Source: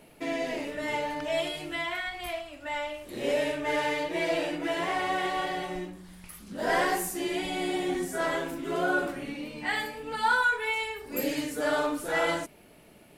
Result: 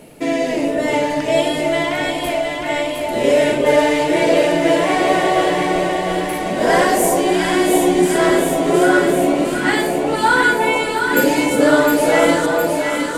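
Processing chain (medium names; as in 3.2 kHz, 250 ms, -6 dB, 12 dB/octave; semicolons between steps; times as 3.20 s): graphic EQ 125/250/500/8000 Hz +5/+4/+5/+6 dB; echo whose repeats swap between lows and highs 355 ms, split 930 Hz, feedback 81%, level -2.5 dB; trim +8.5 dB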